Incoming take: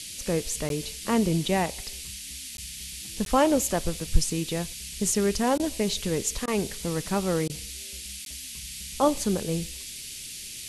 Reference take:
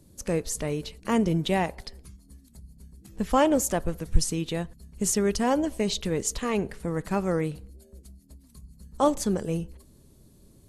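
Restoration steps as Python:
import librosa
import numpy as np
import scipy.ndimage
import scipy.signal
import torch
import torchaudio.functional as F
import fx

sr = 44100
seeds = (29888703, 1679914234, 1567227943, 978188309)

y = fx.notch(x, sr, hz=4600.0, q=30.0)
y = fx.fix_interpolate(y, sr, at_s=(0.69, 2.57, 3.25, 8.25), length_ms=12.0)
y = fx.fix_interpolate(y, sr, at_s=(5.58, 6.46, 7.48), length_ms=15.0)
y = fx.noise_reduce(y, sr, print_start_s=10.01, print_end_s=10.51, reduce_db=16.0)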